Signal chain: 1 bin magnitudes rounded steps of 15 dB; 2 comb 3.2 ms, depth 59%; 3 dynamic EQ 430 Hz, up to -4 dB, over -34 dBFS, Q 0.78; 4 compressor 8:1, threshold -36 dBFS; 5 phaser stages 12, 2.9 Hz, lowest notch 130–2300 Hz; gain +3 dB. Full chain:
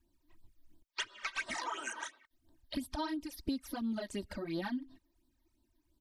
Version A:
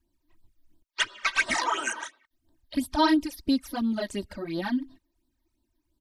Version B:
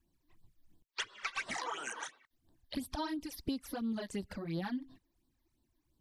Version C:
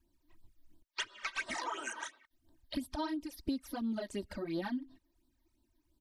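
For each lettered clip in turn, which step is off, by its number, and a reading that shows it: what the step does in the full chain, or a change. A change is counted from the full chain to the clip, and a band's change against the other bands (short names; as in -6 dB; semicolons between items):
4, momentary loudness spread change +7 LU; 2, 125 Hz band +4.5 dB; 3, 500 Hz band +1.5 dB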